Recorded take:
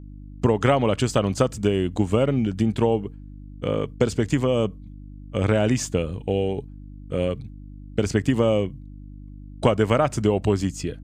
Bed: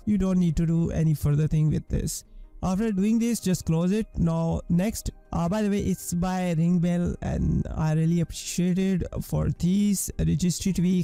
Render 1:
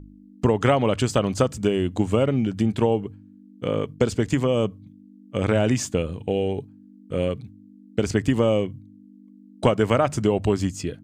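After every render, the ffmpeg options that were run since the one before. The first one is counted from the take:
-af "bandreject=f=50:t=h:w=4,bandreject=f=100:t=h:w=4,bandreject=f=150:t=h:w=4"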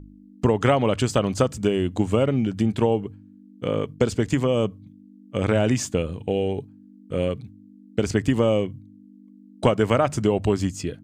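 -af anull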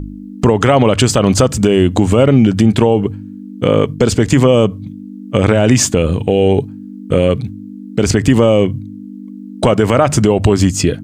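-filter_complex "[0:a]asplit=2[s0][s1];[s1]acompressor=threshold=0.0398:ratio=6,volume=0.841[s2];[s0][s2]amix=inputs=2:normalize=0,alimiter=level_in=4.47:limit=0.891:release=50:level=0:latency=1"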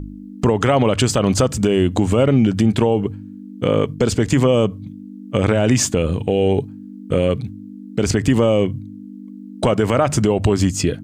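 -af "volume=0.562"

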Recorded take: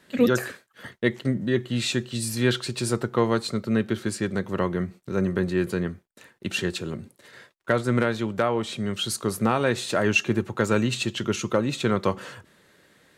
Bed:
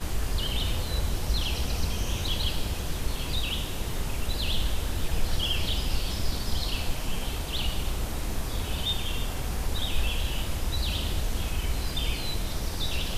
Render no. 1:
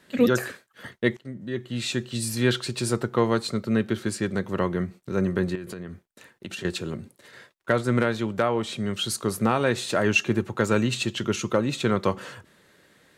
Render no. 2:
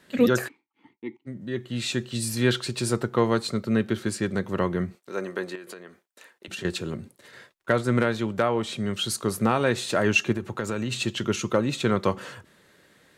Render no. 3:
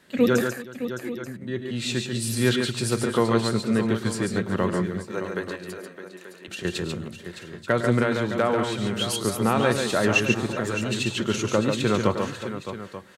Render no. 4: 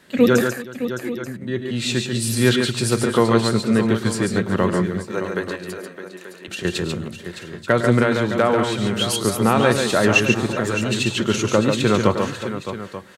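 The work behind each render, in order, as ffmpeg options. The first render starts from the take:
-filter_complex "[0:a]asettb=1/sr,asplit=3[s0][s1][s2];[s0]atrim=end=5.554[s3];[s1]atrim=start=5.55:end=6.65,asetpts=PTS-STARTPTS,afade=t=in:d=0.004:c=qsin,afade=t=out:st=1.096:d=0.004:c=qsin,acompressor=threshold=0.0282:ratio=12:attack=3.2:release=140:knee=1:detection=peak[s4];[s2]atrim=start=6.646[s5];[s3][s4]acrossfade=d=0.004:c1=hsin:c2=qsin[s6];[s6][s5]acrossfade=d=0.004:c1=qsin:c2=hsin,asplit=2[s7][s8];[s7]atrim=end=1.17,asetpts=PTS-STARTPTS,afade=t=out:st=1.166:d=0.004:c=hsin:silence=0.11885[s9];[s8]atrim=start=1.17,asetpts=PTS-STARTPTS,afade=t=in:d=1:silence=0.11885[s10];[s9][s10]concat=n=2:v=0:a=1"
-filter_complex "[0:a]asplit=3[s0][s1][s2];[s0]afade=t=out:st=0.47:d=0.02[s3];[s1]asplit=3[s4][s5][s6];[s4]bandpass=f=300:t=q:w=8,volume=1[s7];[s5]bandpass=f=870:t=q:w=8,volume=0.501[s8];[s6]bandpass=f=2240:t=q:w=8,volume=0.355[s9];[s7][s8][s9]amix=inputs=3:normalize=0,afade=t=in:st=0.47:d=0.02,afade=t=out:st=1.26:d=0.02[s10];[s2]afade=t=in:st=1.26:d=0.02[s11];[s3][s10][s11]amix=inputs=3:normalize=0,asettb=1/sr,asplit=3[s12][s13][s14];[s12]atrim=end=4.954[s15];[s13]atrim=start=4.95:end=6.48,asetpts=PTS-STARTPTS,afade=t=in:d=0.004:c=qsin,afade=t=out:st=1.526:d=0.004:c=qsin,highpass=440[s16];[s14]atrim=start=6.476[s17];[s15][s16]acrossfade=d=0.004:c1=hsin:c2=qsin[s18];[s18][s17]acrossfade=d=0.004:c1=qsin:c2=hsin,asplit=3[s19][s20][s21];[s19]afade=t=out:st=10.32:d=0.02[s22];[s20]acompressor=threshold=0.0631:ratio=5:attack=3.2:release=140:knee=1:detection=peak,afade=t=in:st=10.32:d=0.02,afade=t=out:st=11.01:d=0.02[s23];[s21]afade=t=in:st=11.01:d=0.02[s24];[s22][s23][s24]amix=inputs=3:normalize=0"
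-af "aecho=1:1:105|141|374|613|884:0.188|0.562|0.106|0.299|0.2"
-af "volume=1.78,alimiter=limit=0.794:level=0:latency=1"

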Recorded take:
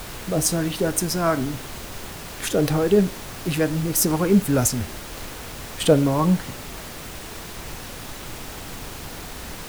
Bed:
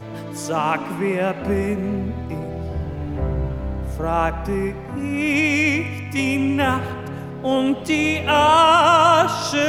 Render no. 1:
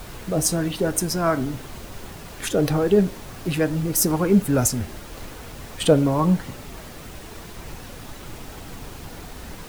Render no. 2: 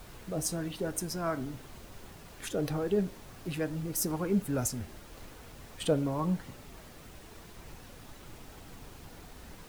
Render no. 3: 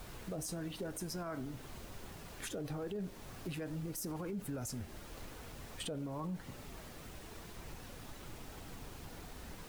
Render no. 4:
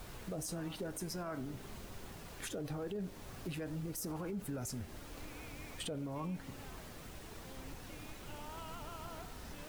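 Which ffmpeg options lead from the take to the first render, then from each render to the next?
-af "afftdn=nr=6:nf=-36"
-af "volume=0.266"
-af "alimiter=level_in=1.5:limit=0.0631:level=0:latency=1:release=21,volume=0.668,acompressor=threshold=0.00794:ratio=2"
-filter_complex "[1:a]volume=0.0141[s0];[0:a][s0]amix=inputs=2:normalize=0"

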